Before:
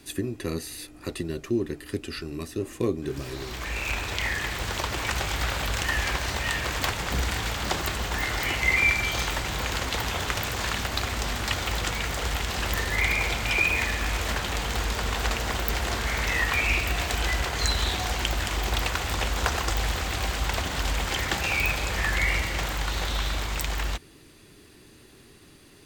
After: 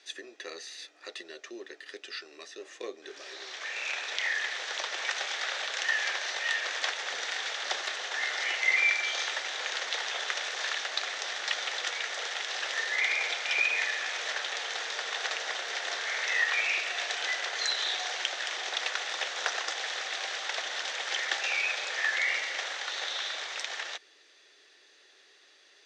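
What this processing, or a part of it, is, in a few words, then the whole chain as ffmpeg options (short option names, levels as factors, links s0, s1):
phone speaker on a table: -af "highpass=f=480:w=0.5412,highpass=f=480:w=1.3066,equalizer=f=1000:t=q:w=4:g=-6,equalizer=f=1800:t=q:w=4:g=6,equalizer=f=3600:t=q:w=4:g=6,equalizer=f=5900:t=q:w=4:g=6,lowpass=f=6500:w=0.5412,lowpass=f=6500:w=1.3066,equalizer=f=280:w=2.1:g=-2.5,volume=0.562"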